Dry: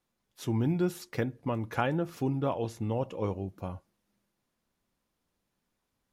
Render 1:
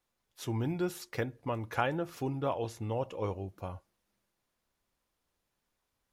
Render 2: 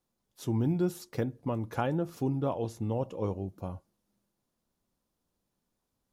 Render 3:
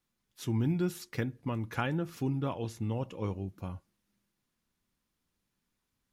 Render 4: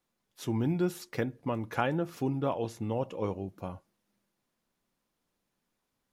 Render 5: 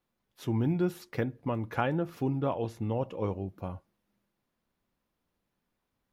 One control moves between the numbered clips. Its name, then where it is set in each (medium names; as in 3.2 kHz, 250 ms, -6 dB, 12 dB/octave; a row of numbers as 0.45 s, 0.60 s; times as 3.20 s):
peaking EQ, frequency: 200 Hz, 2.1 kHz, 620 Hz, 60 Hz, 7.7 kHz